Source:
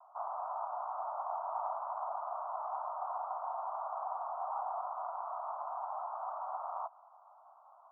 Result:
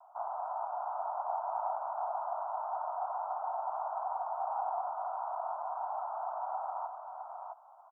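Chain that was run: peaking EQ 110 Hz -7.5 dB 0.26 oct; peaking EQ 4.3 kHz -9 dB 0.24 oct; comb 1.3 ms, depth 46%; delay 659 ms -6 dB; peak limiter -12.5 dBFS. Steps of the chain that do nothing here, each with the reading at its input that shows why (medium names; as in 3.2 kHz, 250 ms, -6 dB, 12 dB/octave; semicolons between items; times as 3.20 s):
peaking EQ 110 Hz: input has nothing below 510 Hz; peaking EQ 4.3 kHz: input has nothing above 1.5 kHz; peak limiter -12.5 dBFS: peak at its input -23.0 dBFS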